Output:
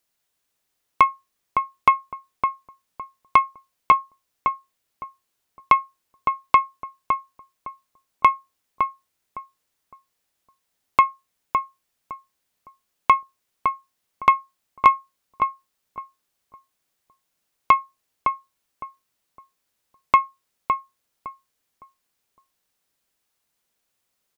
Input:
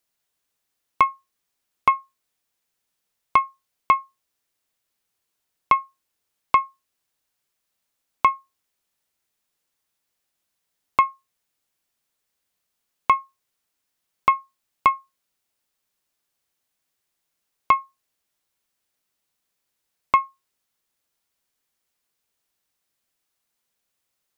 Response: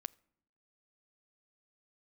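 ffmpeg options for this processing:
-filter_complex "[0:a]asplit=2[s0][s1];[s1]adelay=560,lowpass=f=1200:p=1,volume=0.631,asplit=2[s2][s3];[s3]adelay=560,lowpass=f=1200:p=1,volume=0.28,asplit=2[s4][s5];[s5]adelay=560,lowpass=f=1200:p=1,volume=0.28,asplit=2[s6][s7];[s7]adelay=560,lowpass=f=1200:p=1,volume=0.28[s8];[s0][s2][s4][s6][s8]amix=inputs=5:normalize=0,volume=1.26"

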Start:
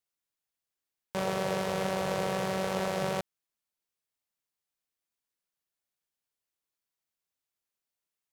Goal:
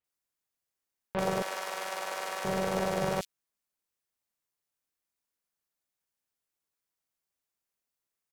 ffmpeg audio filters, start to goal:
-filter_complex "[0:a]asettb=1/sr,asplit=3[s0][s1][s2];[s0]atrim=end=1.424[s3];[s1]atrim=start=1.42:end=2.45,asetpts=PTS-STARTPTS,afade=t=in:d=0.004:c=qsin,afade=t=out:st=1.026:d=0.004:c=qsin,highpass=930[s4];[s2]atrim=start=2.446[s5];[s3][s4]acrossfade=d=0.004:c1=hsin:c2=qsin[s6];[s6][s5]acrossfade=d=0.004:c1=qsin:c2=hsin,tremolo=f=210:d=0.519,acrossover=split=3400[s7][s8];[s8]adelay=40[s9];[s7][s9]amix=inputs=2:normalize=0,volume=1.5"

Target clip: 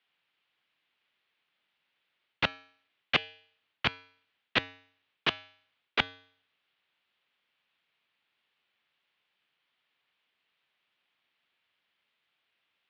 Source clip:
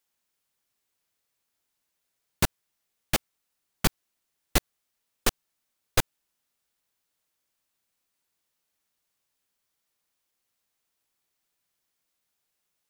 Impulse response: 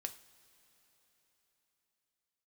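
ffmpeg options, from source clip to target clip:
-af "areverse,acompressor=threshold=0.0562:ratio=6,areverse,bandreject=f=176.6:t=h:w=4,bandreject=f=353.2:t=h:w=4,bandreject=f=529.8:t=h:w=4,bandreject=f=706.4:t=h:w=4,bandreject=f=883:t=h:w=4,bandreject=f=1059.6:t=h:w=4,bandreject=f=1236.2:t=h:w=4,bandreject=f=1412.8:t=h:w=4,bandreject=f=1589.4:t=h:w=4,bandreject=f=1766:t=h:w=4,bandreject=f=1942.6:t=h:w=4,bandreject=f=2119.2:t=h:w=4,bandreject=f=2295.8:t=h:w=4,bandreject=f=2472.4:t=h:w=4,bandreject=f=2649:t=h:w=4,bandreject=f=2825.6:t=h:w=4,bandreject=f=3002.2:t=h:w=4,bandreject=f=3178.8:t=h:w=4,bandreject=f=3355.4:t=h:w=4,bandreject=f=3532:t=h:w=4,bandreject=f=3708.6:t=h:w=4,bandreject=f=3885.2:t=h:w=4,bandreject=f=4061.8:t=h:w=4,bandreject=f=4238.4:t=h:w=4,bandreject=f=4415:t=h:w=4,bandreject=f=4591.6:t=h:w=4,bandreject=f=4768.2:t=h:w=4,bandreject=f=4944.8:t=h:w=4,bandreject=f=5121.4:t=h:w=4,bandreject=f=5298:t=h:w=4,bandreject=f=5474.6:t=h:w=4,bandreject=f=5651.2:t=h:w=4,bandreject=f=5827.8:t=h:w=4,bandreject=f=6004.4:t=h:w=4,bandreject=f=6181:t=h:w=4,bandreject=f=6357.6:t=h:w=4,bandreject=f=6534.2:t=h:w=4,bandreject=f=6710.8:t=h:w=4,bandreject=f=6887.4:t=h:w=4,highpass=f=180:t=q:w=0.5412,highpass=f=180:t=q:w=1.307,lowpass=f=3300:t=q:w=0.5176,lowpass=f=3300:t=q:w=0.7071,lowpass=f=3300:t=q:w=1.932,afreqshift=-78,crystalizer=i=9:c=0"

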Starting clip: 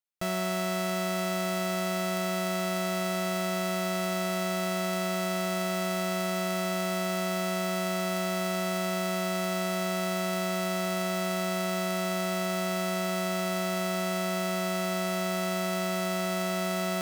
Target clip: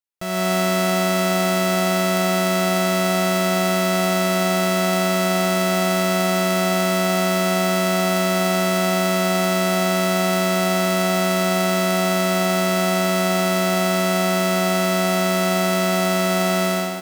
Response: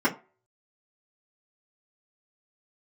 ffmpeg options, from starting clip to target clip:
-filter_complex "[0:a]dynaudnorm=f=130:g=5:m=4.22,asplit=5[s0][s1][s2][s3][s4];[s1]adelay=152,afreqshift=83,volume=0.141[s5];[s2]adelay=304,afreqshift=166,volume=0.0596[s6];[s3]adelay=456,afreqshift=249,volume=0.0248[s7];[s4]adelay=608,afreqshift=332,volume=0.0105[s8];[s0][s5][s6][s7][s8]amix=inputs=5:normalize=0,volume=0.794"

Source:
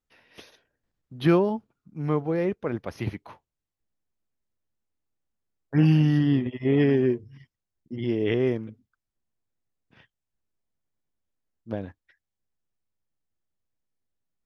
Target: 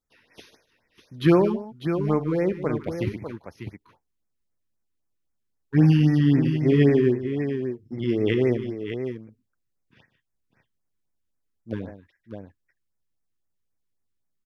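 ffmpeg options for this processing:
-filter_complex "[0:a]asplit=2[s0][s1];[s1]aeval=exprs='sgn(val(0))*max(abs(val(0))-0.015,0)':c=same,volume=0.355[s2];[s0][s2]amix=inputs=2:normalize=0,aecho=1:1:56|150|599:0.168|0.211|0.376,afftfilt=real='re*(1-between(b*sr/1024,600*pow(3700/600,0.5+0.5*sin(2*PI*3.8*pts/sr))/1.41,600*pow(3700/600,0.5+0.5*sin(2*PI*3.8*pts/sr))*1.41))':imag='im*(1-between(b*sr/1024,600*pow(3700/600,0.5+0.5*sin(2*PI*3.8*pts/sr))/1.41,600*pow(3700/600,0.5+0.5*sin(2*PI*3.8*pts/sr))*1.41))':win_size=1024:overlap=0.75"

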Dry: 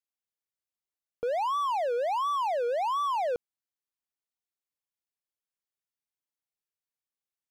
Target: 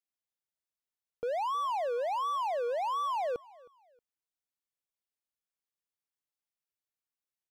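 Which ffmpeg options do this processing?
-af "aecho=1:1:315|630:0.0708|0.0219,volume=0.668"

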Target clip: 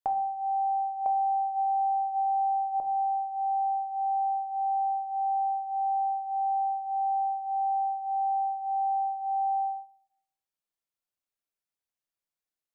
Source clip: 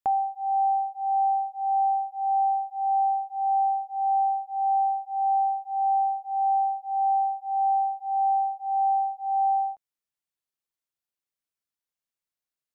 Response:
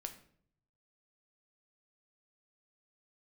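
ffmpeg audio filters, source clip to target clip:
-filter_complex "[0:a]asetnsamples=n=441:p=0,asendcmd='1.06 equalizer g 14;2.8 equalizer g 3.5',equalizer=f=690:t=o:w=1:g=4,acompressor=threshold=0.0891:ratio=10[s0];[1:a]atrim=start_sample=2205[s1];[s0][s1]afir=irnorm=-1:irlink=0"

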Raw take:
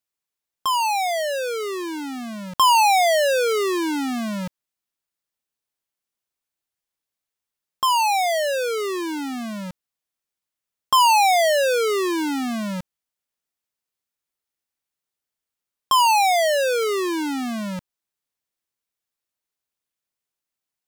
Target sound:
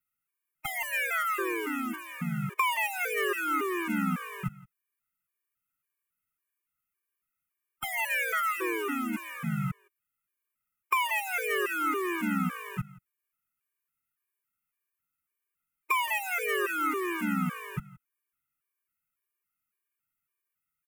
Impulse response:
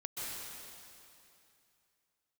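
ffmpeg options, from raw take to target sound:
-filter_complex "[0:a]asplit=3[s0][s1][s2];[s1]asetrate=29433,aresample=44100,atempo=1.49831,volume=0.501[s3];[s2]asetrate=33038,aresample=44100,atempo=1.33484,volume=0.891[s4];[s0][s3][s4]amix=inputs=3:normalize=0,acrossover=split=110|4700[s5][s6][s7];[s7]asoftclip=type=tanh:threshold=0.0794[s8];[s5][s6][s8]amix=inputs=3:normalize=0,firequalizer=gain_entry='entry(170,0);entry(240,-5);entry(400,-5);entry(590,-25);entry(1000,-7);entry(2400,3);entry(4000,-22);entry(7100,-8);entry(12000,4)':delay=0.05:min_phase=1,acompressor=threshold=0.0562:ratio=6,equalizer=f=1300:w=4.6:g=13,asplit=2[s9][s10];[s10]aecho=0:1:169:0.0891[s11];[s9][s11]amix=inputs=2:normalize=0,afftfilt=real='re*gt(sin(2*PI*1.8*pts/sr)*(1-2*mod(floor(b*sr/1024/310),2)),0)':imag='im*gt(sin(2*PI*1.8*pts/sr)*(1-2*mod(floor(b*sr/1024/310),2)),0)':win_size=1024:overlap=0.75"

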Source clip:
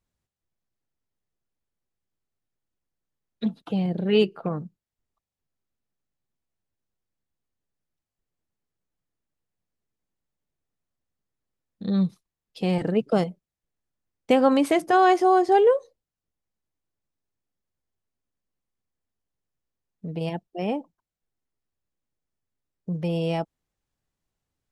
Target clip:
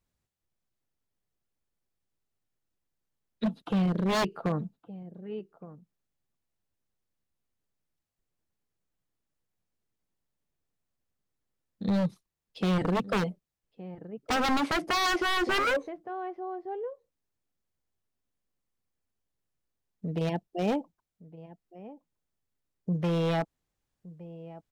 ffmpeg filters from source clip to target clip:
-filter_complex "[0:a]acrossover=split=4400[s0][s1];[s1]acompressor=threshold=0.00112:ratio=4:attack=1:release=60[s2];[s0][s2]amix=inputs=2:normalize=0,asplit=2[s3][s4];[s4]adelay=1166,volume=0.126,highshelf=f=4000:g=-26.2[s5];[s3][s5]amix=inputs=2:normalize=0,aeval=exprs='0.0891*(abs(mod(val(0)/0.0891+3,4)-2)-1)':c=same"

